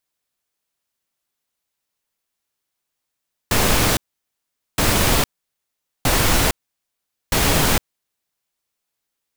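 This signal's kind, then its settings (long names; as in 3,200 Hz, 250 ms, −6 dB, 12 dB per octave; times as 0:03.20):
noise bursts pink, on 0.46 s, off 0.81 s, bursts 4, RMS −16.5 dBFS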